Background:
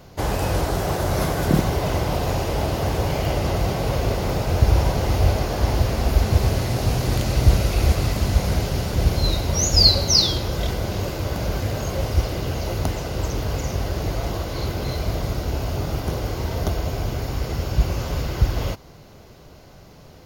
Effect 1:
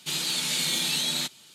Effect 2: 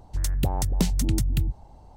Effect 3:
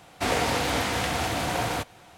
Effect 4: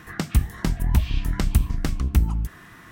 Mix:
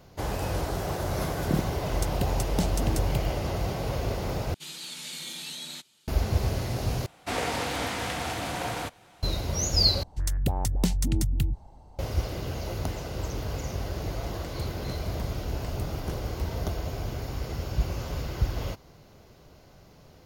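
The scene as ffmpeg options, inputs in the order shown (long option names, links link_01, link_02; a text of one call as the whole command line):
ffmpeg -i bed.wav -i cue0.wav -i cue1.wav -i cue2.wav -i cue3.wav -filter_complex "[2:a]asplit=2[link_01][link_02];[0:a]volume=-7.5dB,asplit=4[link_03][link_04][link_05][link_06];[link_03]atrim=end=4.544[link_07];[1:a]atrim=end=1.54,asetpts=PTS-STARTPTS,volume=-11.5dB[link_08];[link_04]atrim=start=6.076:end=7.064[link_09];[3:a]atrim=end=2.17,asetpts=PTS-STARTPTS,volume=-4.5dB[link_10];[link_05]atrim=start=9.226:end=10.034[link_11];[link_02]atrim=end=1.96,asetpts=PTS-STARTPTS,volume=-2dB[link_12];[link_06]atrim=start=11.986[link_13];[link_01]atrim=end=1.96,asetpts=PTS-STARTPTS,volume=-4.5dB,afade=type=in:duration=0.004:curve=hsin,afade=type=out:start_time=1.956:duration=0.004:curve=hsin,adelay=1780[link_14];[4:a]atrim=end=2.91,asetpts=PTS-STARTPTS,volume=-17dB,afade=type=in:duration=0.004:curve=hsin,afade=type=out:start_time=2.906:duration=0.004:curve=hsin,adelay=14250[link_15];[link_07][link_08]acrossfade=duration=0.004:curve1=hsin:curve2=hsin[link_16];[link_16][link_09]acrossfade=duration=0.004:curve1=hsin:curve2=hsin[link_17];[link_17][link_10]acrossfade=duration=0.004:curve1=hsin:curve2=hsin[link_18];[link_18][link_11]acrossfade=duration=0.004:curve1=hsin:curve2=hsin[link_19];[link_19][link_12]acrossfade=duration=0.004:curve1=hsin:curve2=hsin[link_20];[link_20][link_13]acrossfade=duration=0.004:curve1=hsin:curve2=hsin[link_21];[link_21][link_14][link_15]amix=inputs=3:normalize=0" out.wav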